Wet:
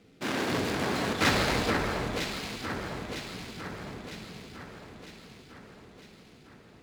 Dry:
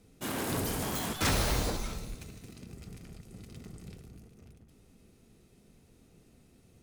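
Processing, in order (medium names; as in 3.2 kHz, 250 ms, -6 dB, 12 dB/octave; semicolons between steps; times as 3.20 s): median filter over 15 samples; frequency weighting D; echo whose repeats swap between lows and highs 477 ms, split 2 kHz, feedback 73%, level -4 dB; trim +5.5 dB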